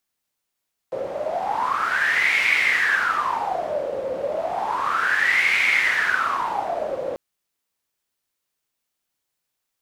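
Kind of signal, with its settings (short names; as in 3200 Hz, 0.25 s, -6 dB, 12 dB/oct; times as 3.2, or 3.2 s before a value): wind-like swept noise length 6.24 s, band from 530 Hz, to 2200 Hz, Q 11, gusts 2, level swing 8.5 dB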